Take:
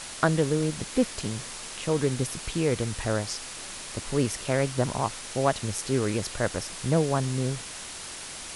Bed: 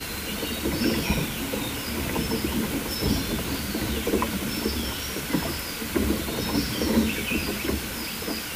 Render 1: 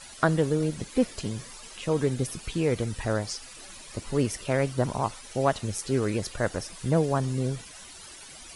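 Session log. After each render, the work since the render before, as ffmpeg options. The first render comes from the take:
-af "afftdn=nr=13:nf=-40"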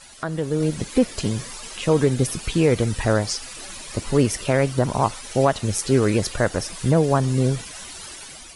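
-af "alimiter=limit=-15dB:level=0:latency=1:release=230,dynaudnorm=f=250:g=5:m=8.5dB"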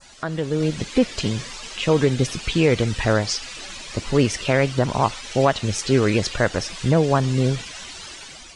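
-af "lowpass=f=7.6k:w=0.5412,lowpass=f=7.6k:w=1.3066,adynamicequalizer=threshold=0.00891:dfrequency=2900:dqfactor=0.86:tfrequency=2900:tqfactor=0.86:attack=5:release=100:ratio=0.375:range=3:mode=boostabove:tftype=bell"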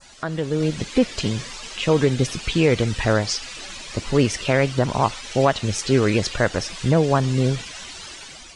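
-af anull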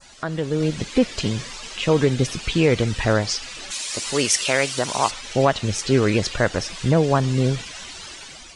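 -filter_complex "[0:a]asplit=3[a][b][c];[a]afade=t=out:st=3.7:d=0.02[d];[b]aemphasis=mode=production:type=riaa,afade=t=in:st=3.7:d=0.02,afade=t=out:st=5.1:d=0.02[e];[c]afade=t=in:st=5.1:d=0.02[f];[d][e][f]amix=inputs=3:normalize=0"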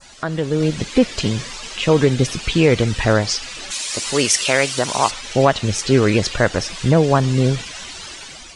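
-af "volume=3.5dB,alimiter=limit=-2dB:level=0:latency=1"

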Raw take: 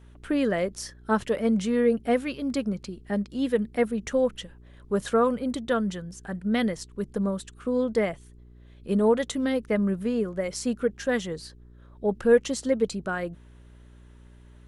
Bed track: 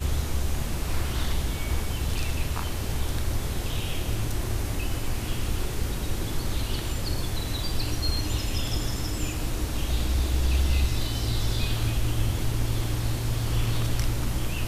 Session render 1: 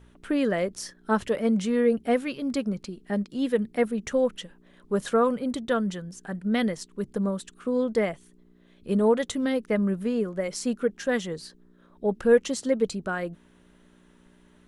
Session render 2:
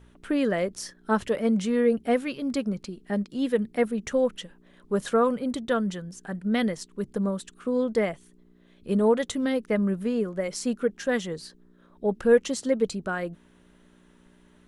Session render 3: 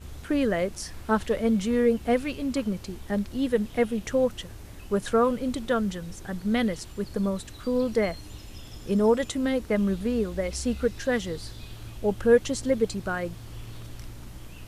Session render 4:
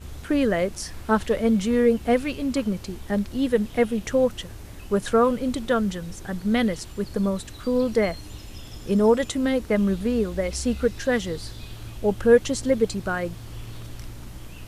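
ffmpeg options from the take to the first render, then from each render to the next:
-af "bandreject=f=60:t=h:w=4,bandreject=f=120:t=h:w=4"
-af anull
-filter_complex "[1:a]volume=-15dB[a];[0:a][a]amix=inputs=2:normalize=0"
-af "volume=3dB"

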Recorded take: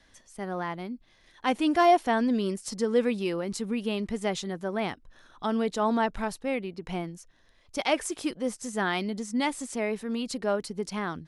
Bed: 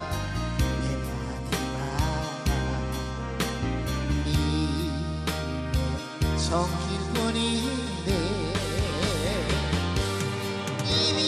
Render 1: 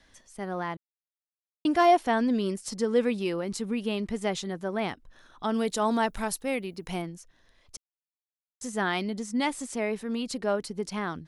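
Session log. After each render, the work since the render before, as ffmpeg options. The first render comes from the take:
-filter_complex "[0:a]asettb=1/sr,asplit=3[a][b][c];[a]atrim=end=5.544[d];[b]atrim=start=5.54:end=7.02,asetpts=PTS-STARTPTS,afade=t=in:d=0.004:c=qsin,afade=t=out:st=1.476:d=0.004:c=qsin,aemphasis=mode=production:type=50fm[e];[c]atrim=start=7.016[f];[d][e]acrossfade=d=0.004:c1=hsin:c2=qsin[g];[g][f]acrossfade=d=0.004:c1=qsin:c2=hsin,asplit=5[h][i][j][k][l];[h]atrim=end=0.77,asetpts=PTS-STARTPTS,afade=t=out:st=0.766:d=0.004:c=hsin[m];[i]atrim=start=0.77:end=1.65,asetpts=PTS-STARTPTS,volume=0[n];[j]atrim=start=1.65:end=7.77,asetpts=PTS-STARTPTS,afade=t=in:d=0.004:c=hsin,afade=t=out:st=6.116:d=0.004:c=hsin[o];[k]atrim=start=7.77:end=8.61,asetpts=PTS-STARTPTS,volume=0[p];[l]atrim=start=8.61,asetpts=PTS-STARTPTS,afade=t=in:d=0.004:c=hsin[q];[m][n][o][p][q]concat=n=5:v=0:a=1"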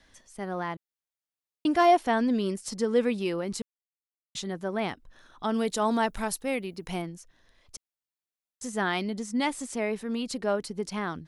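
-filter_complex "[0:a]asplit=3[a][b][c];[a]atrim=end=3.62,asetpts=PTS-STARTPTS,afade=t=out:st=3.616:d=0.004:c=hsin[d];[b]atrim=start=3.62:end=4.35,asetpts=PTS-STARTPTS,volume=0[e];[c]atrim=start=4.35,asetpts=PTS-STARTPTS,afade=t=in:d=0.004:c=hsin[f];[d][e][f]concat=n=3:v=0:a=1"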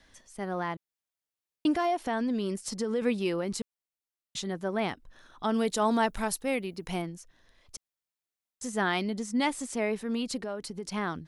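-filter_complex "[0:a]asettb=1/sr,asplit=3[a][b][c];[a]atrim=end=1.754[d];[b]atrim=start=1.75:end=3.02,asetpts=PTS-STARTPTS,afade=t=in:d=0.004:c=qsin,afade=t=out:st=1.266:d=0.004:c=qsin,acompressor=threshold=-27dB:ratio=3:attack=3.2:release=140:knee=1:detection=peak[e];[c]atrim=start=3.016[f];[d][e]acrossfade=d=0.004:c1=hsin:c2=qsin[g];[g][f]acrossfade=d=0.004:c1=qsin:c2=hsin,asettb=1/sr,asplit=3[h][i][j];[h]atrim=end=10.414[k];[i]atrim=start=10.41:end=10.87,asetpts=PTS-STARTPTS,afade=t=in:d=0.004:c=qsin,afade=t=out:st=0.456:d=0.004:c=qsin,acompressor=threshold=-34dB:ratio=3:attack=3.2:release=140:knee=1:detection=peak[l];[j]atrim=start=10.866[m];[k][l]acrossfade=d=0.004:c1=hsin:c2=qsin[n];[n][m]acrossfade=d=0.004:c1=qsin:c2=hsin"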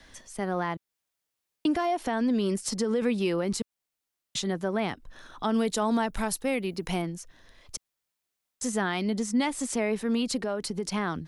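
-filter_complex "[0:a]acrossover=split=220[a][b];[b]acompressor=threshold=-29dB:ratio=2.5[c];[a][c]amix=inputs=2:normalize=0,asplit=2[d][e];[e]alimiter=level_in=6dB:limit=-24dB:level=0:latency=1:release=333,volume=-6dB,volume=2.5dB[f];[d][f]amix=inputs=2:normalize=0"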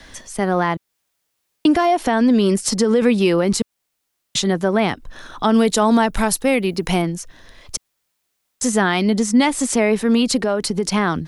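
-af "volume=11dB"

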